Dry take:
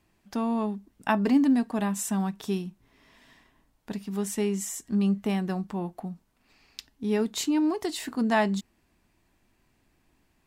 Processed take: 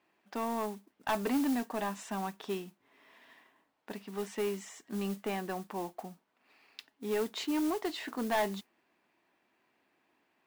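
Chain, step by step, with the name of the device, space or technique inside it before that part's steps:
carbon microphone (band-pass filter 380–3,200 Hz; soft clipping −24.5 dBFS, distortion −11 dB; noise that follows the level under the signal 17 dB)

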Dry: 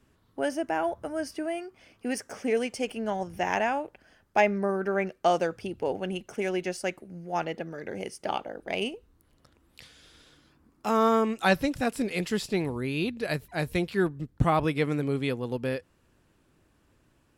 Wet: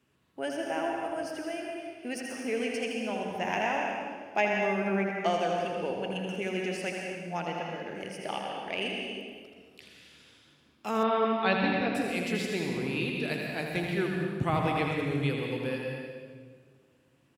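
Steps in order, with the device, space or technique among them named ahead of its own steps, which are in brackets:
PA in a hall (high-pass filter 110 Hz 12 dB per octave; parametric band 2,700 Hz +6 dB 0.68 octaves; single-tap delay 81 ms −6.5 dB; convolution reverb RT60 1.8 s, pre-delay 112 ms, DRR 1 dB)
0:11.03–0:11.95: Butterworth low-pass 4,500 Hz 48 dB per octave
level −6 dB

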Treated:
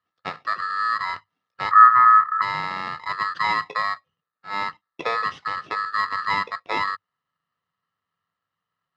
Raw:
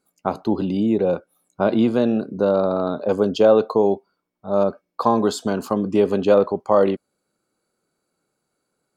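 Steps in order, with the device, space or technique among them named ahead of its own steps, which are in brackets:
ring modulator pedal into a guitar cabinet (ring modulator with a square carrier 1,500 Hz; loudspeaker in its box 92–4,000 Hz, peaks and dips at 100 Hz +8 dB, 160 Hz +9 dB, 500 Hz +5 dB, 840 Hz −3 dB, 1,300 Hz +8 dB, 2,300 Hz −8 dB)
0:01.71–0:02.42: drawn EQ curve 380 Hz 0 dB, 620 Hz −11 dB, 1,300 Hz +13 dB, 3,700 Hz −17 dB
level −8 dB

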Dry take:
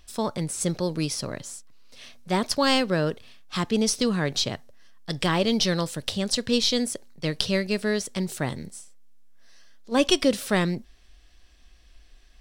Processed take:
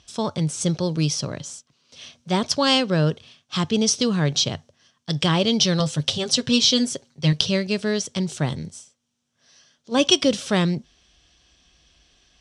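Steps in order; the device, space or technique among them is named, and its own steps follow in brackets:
car door speaker (loudspeaker in its box 83–8,500 Hz, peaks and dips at 91 Hz +8 dB, 150 Hz +8 dB, 1,900 Hz −4 dB, 3,200 Hz +6 dB, 5,900 Hz +6 dB)
0:05.79–0:07.33: comb filter 7.5 ms, depth 72%
level +1.5 dB

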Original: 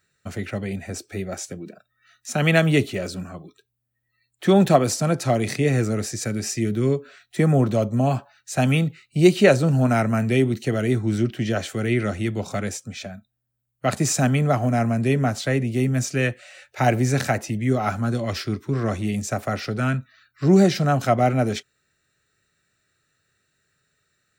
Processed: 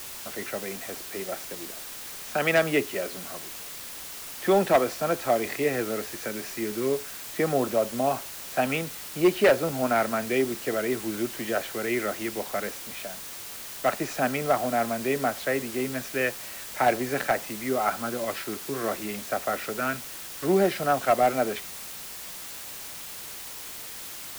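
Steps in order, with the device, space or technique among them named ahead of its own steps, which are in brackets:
aircraft radio (band-pass filter 400–2,400 Hz; hard clipping −13.5 dBFS, distortion −16 dB; white noise bed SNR 11 dB)

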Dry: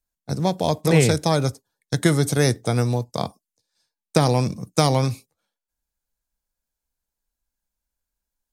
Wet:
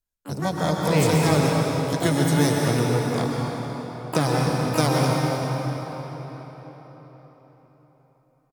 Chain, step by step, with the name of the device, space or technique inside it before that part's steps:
shimmer-style reverb (pitch-shifted copies added +12 semitones −7 dB; convolution reverb RT60 4.7 s, pre-delay 110 ms, DRR −2 dB)
level −5 dB

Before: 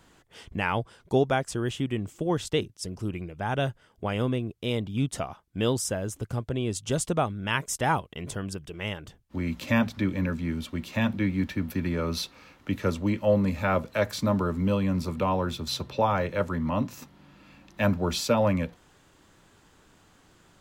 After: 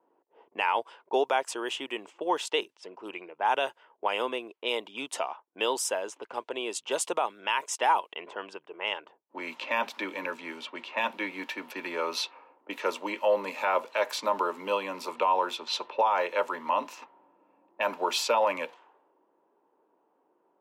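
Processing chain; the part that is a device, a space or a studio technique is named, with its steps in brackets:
low-pass that shuts in the quiet parts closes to 370 Hz, open at −25 dBFS
laptop speaker (high-pass filter 390 Hz 24 dB per octave; parametric band 940 Hz +11.5 dB 0.39 octaves; parametric band 2,700 Hz +7 dB 0.54 octaves; brickwall limiter −15 dBFS, peak gain reduction 9.5 dB)

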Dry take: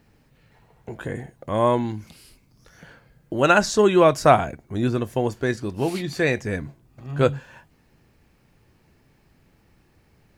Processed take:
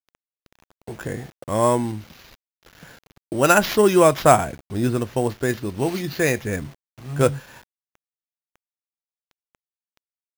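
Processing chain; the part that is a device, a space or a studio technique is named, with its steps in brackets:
early 8-bit sampler (sample-rate reduction 8,700 Hz, jitter 0%; bit reduction 8 bits)
level +1 dB

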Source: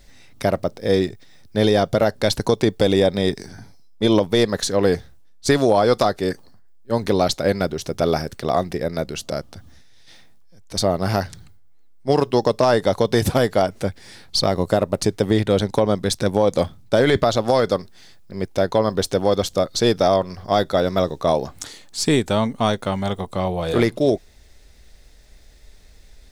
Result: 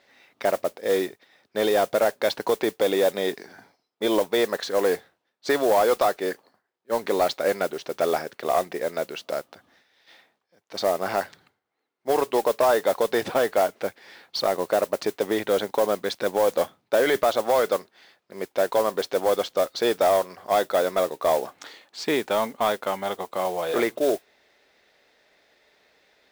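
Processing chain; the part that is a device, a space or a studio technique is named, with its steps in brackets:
carbon microphone (band-pass filter 440–3,000 Hz; soft clipping −11 dBFS, distortion −20 dB; noise that follows the level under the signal 18 dB)

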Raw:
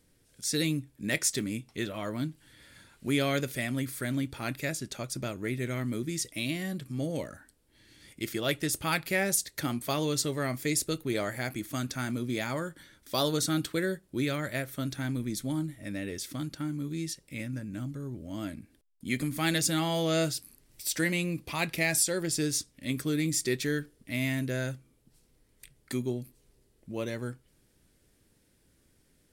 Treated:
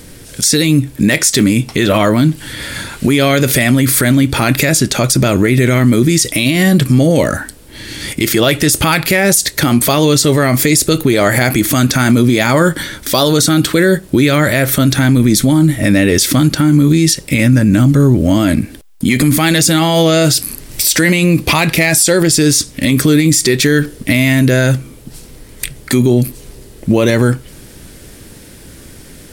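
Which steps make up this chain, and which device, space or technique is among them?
loud club master (downward compressor 2 to 1, threshold −34 dBFS, peak gain reduction 7 dB; hard clipping −23 dBFS, distortion −36 dB; boost into a limiter +32 dB)
level −1 dB

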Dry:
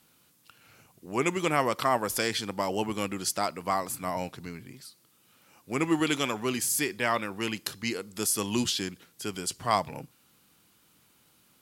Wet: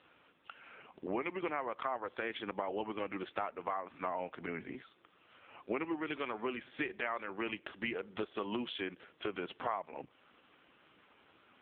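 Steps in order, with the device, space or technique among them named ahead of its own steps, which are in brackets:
voicemail (band-pass filter 330–2,800 Hz; downward compressor 10 to 1, threshold −43 dBFS, peak gain reduction 23 dB; level +10.5 dB; AMR narrowband 5.15 kbit/s 8,000 Hz)

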